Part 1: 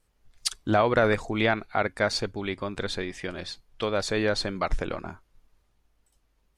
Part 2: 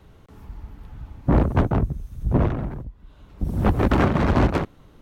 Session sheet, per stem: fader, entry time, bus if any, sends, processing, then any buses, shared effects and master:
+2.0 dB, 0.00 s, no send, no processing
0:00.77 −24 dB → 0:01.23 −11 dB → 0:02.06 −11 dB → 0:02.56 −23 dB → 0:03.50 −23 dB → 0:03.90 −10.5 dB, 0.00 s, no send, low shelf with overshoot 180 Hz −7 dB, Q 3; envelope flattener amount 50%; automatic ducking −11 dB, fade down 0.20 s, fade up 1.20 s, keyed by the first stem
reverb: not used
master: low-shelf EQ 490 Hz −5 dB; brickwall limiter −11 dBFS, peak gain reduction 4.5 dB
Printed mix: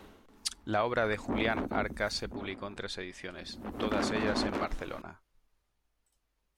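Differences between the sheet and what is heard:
stem 1 +2.0 dB → −6.0 dB
stem 2 −24.0 dB → −15.0 dB

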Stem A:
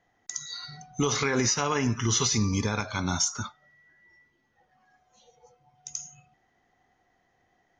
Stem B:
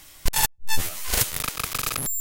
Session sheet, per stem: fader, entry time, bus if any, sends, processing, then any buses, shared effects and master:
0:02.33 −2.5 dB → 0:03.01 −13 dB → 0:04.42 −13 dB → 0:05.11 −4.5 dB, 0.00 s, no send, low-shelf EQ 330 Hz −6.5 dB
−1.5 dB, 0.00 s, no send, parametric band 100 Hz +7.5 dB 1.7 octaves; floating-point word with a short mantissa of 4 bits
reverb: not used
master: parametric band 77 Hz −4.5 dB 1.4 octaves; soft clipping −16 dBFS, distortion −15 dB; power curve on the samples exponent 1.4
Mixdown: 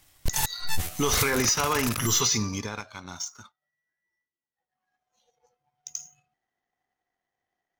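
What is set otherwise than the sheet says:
stem A −2.5 dB → +6.5 dB
master: missing parametric band 77 Hz −4.5 dB 1.4 octaves

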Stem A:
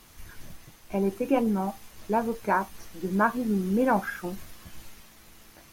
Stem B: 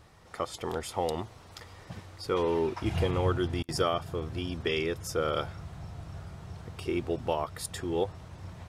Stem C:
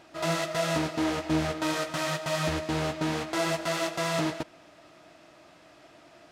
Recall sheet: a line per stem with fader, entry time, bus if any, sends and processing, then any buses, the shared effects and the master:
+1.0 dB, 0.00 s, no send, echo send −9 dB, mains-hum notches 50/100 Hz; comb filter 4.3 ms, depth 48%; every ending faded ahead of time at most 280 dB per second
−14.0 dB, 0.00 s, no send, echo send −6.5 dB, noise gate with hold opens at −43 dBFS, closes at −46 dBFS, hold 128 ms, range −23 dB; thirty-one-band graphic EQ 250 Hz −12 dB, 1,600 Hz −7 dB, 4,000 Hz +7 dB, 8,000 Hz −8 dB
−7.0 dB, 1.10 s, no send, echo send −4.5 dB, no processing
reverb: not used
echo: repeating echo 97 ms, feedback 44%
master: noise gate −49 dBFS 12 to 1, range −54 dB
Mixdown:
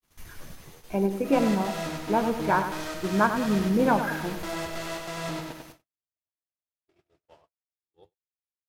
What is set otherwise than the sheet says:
stem A: missing comb filter 4.3 ms, depth 48%
stem B −14.0 dB → −23.5 dB

